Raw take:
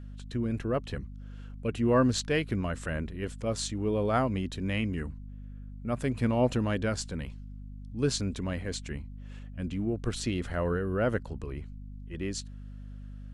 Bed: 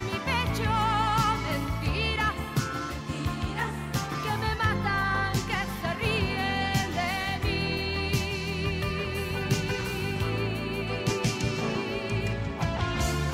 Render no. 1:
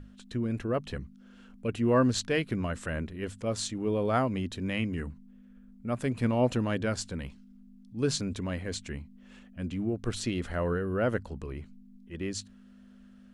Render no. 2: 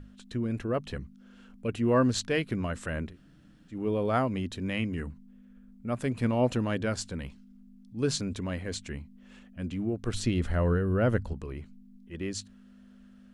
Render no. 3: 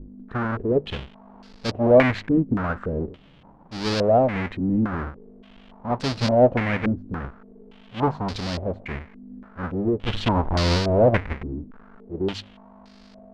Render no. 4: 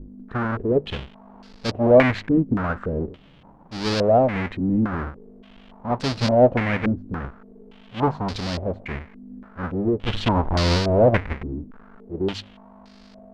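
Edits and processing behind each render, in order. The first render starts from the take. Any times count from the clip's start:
hum notches 50/100/150 Hz
3.13–3.73 s: room tone, crossfade 0.10 s; 10.13–11.33 s: bass shelf 150 Hz +11 dB
square wave that keeps the level; step-sequenced low-pass 3.5 Hz 280–4700 Hz
trim +1 dB

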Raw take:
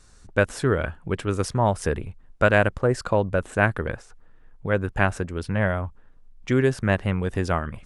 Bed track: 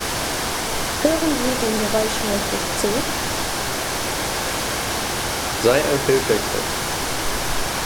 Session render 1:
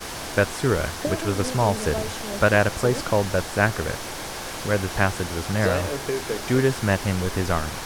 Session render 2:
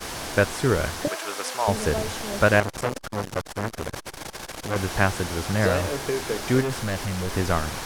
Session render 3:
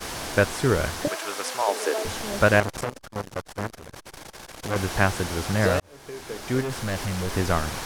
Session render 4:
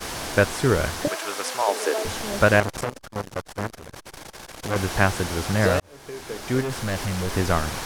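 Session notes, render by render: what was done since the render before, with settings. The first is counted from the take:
add bed track -9.5 dB
1.08–1.68 s: high-pass 700 Hz; 2.60–4.76 s: transformer saturation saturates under 1.9 kHz; 6.61–7.33 s: overload inside the chain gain 24 dB
1.62–2.05 s: steep high-pass 290 Hz 48 dB/octave; 2.84–4.63 s: level held to a coarse grid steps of 14 dB; 5.80–7.00 s: fade in
trim +1.5 dB; peak limiter -3 dBFS, peak gain reduction 1 dB

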